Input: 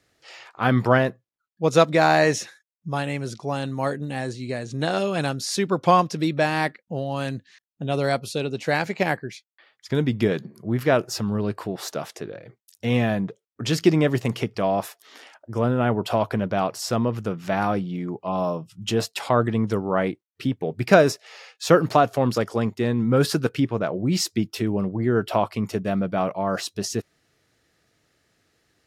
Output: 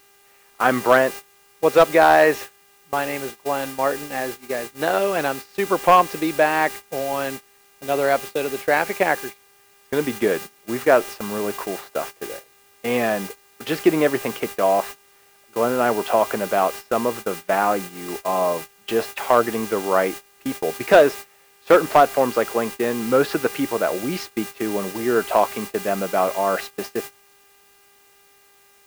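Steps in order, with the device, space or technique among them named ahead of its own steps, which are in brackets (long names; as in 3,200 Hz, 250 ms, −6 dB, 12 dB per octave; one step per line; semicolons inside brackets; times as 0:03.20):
aircraft radio (band-pass filter 380–2,300 Hz; hard clipping −11 dBFS, distortion −18 dB; hum with harmonics 400 Hz, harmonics 7, −45 dBFS −2 dB per octave; white noise bed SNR 15 dB; noise gate −35 dBFS, range −20 dB)
level +5.5 dB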